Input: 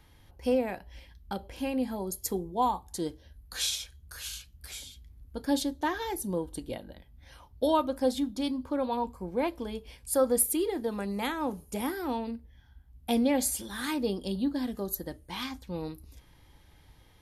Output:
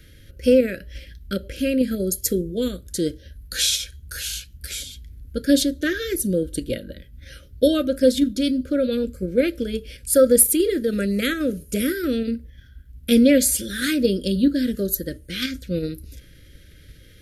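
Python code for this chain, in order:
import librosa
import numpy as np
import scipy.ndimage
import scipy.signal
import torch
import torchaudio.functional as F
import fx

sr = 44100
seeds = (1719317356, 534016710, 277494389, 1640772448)

p1 = scipy.signal.sosfilt(scipy.signal.ellip(3, 1.0, 40, [570.0, 1400.0], 'bandstop', fs=sr, output='sos'), x)
p2 = fx.level_steps(p1, sr, step_db=9)
p3 = p1 + (p2 * 10.0 ** (2.0 / 20.0))
y = p3 * 10.0 ** (6.0 / 20.0)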